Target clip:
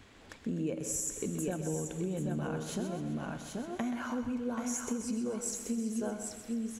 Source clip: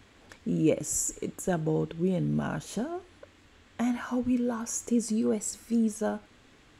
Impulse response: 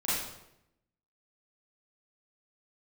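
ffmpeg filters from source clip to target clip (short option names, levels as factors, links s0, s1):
-filter_complex "[0:a]asplit=2[s0][s1];[s1]aecho=0:1:182|782|799:0.112|0.473|0.112[s2];[s0][s2]amix=inputs=2:normalize=0,acompressor=threshold=0.0251:ratio=6,asplit=2[s3][s4];[s4]aecho=0:1:128|256|384|512|640|768:0.316|0.171|0.0922|0.0498|0.0269|0.0145[s5];[s3][s5]amix=inputs=2:normalize=0"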